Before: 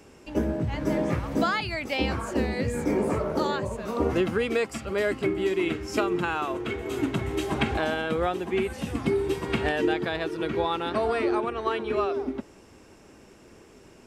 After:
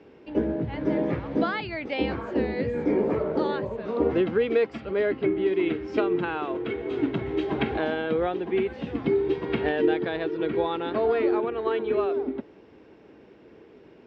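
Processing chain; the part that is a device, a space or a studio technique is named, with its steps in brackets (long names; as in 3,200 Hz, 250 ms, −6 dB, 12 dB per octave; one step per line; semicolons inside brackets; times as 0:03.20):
0:04.91–0:05.53: high-frequency loss of the air 78 metres
guitar cabinet (loudspeaker in its box 76–3,700 Hz, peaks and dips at 93 Hz −5 dB, 310 Hz +4 dB, 450 Hz +6 dB, 1,200 Hz −4 dB, 2,700 Hz −3 dB)
level −1.5 dB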